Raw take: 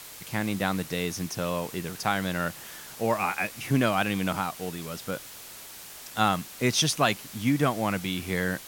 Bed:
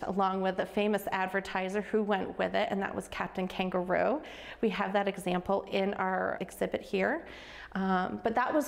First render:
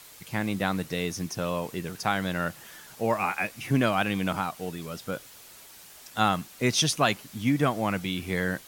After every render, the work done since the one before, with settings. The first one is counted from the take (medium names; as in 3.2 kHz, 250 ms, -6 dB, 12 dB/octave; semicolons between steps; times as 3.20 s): noise reduction 6 dB, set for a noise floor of -44 dBFS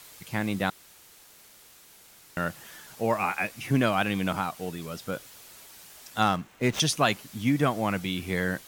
0.70–2.37 s: room tone; 6.22–6.80 s: median filter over 9 samples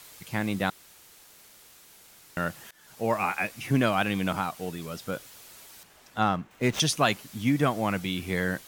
2.71–3.22 s: fade in equal-power, from -23 dB; 5.83–6.51 s: treble shelf 3.4 kHz -12 dB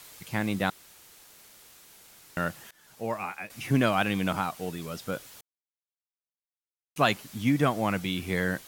2.44–3.50 s: fade out, to -11.5 dB; 5.41–6.96 s: mute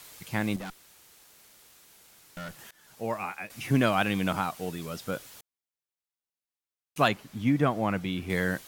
0.56–2.59 s: valve stage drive 36 dB, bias 0.6; 7.08–8.30 s: treble shelf 3.3 kHz -10.5 dB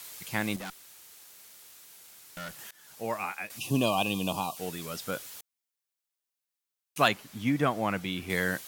3.58–4.57 s: time-frequency box 1.2–2.4 kHz -23 dB; tilt EQ +1.5 dB/octave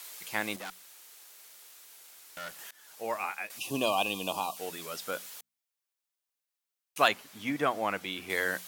tone controls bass -14 dB, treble -1 dB; hum notches 60/120/180/240 Hz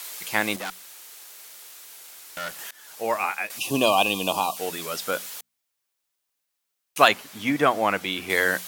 trim +8.5 dB; peak limiter -1 dBFS, peak gain reduction 2 dB